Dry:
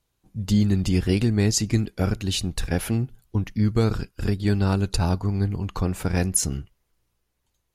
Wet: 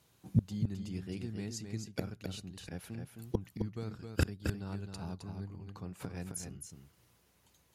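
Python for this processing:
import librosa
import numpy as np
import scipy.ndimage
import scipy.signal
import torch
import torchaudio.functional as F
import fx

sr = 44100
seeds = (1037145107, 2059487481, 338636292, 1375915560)

p1 = scipy.signal.sosfilt(scipy.signal.butter(4, 77.0, 'highpass', fs=sr, output='sos'), x)
p2 = fx.peak_eq(p1, sr, hz=170.0, db=5.0, octaves=0.28)
p3 = fx.gate_flip(p2, sr, shuts_db=-23.0, range_db=-28)
p4 = p3 + fx.echo_single(p3, sr, ms=264, db=-6.0, dry=0)
y = F.gain(torch.from_numpy(p4), 7.5).numpy()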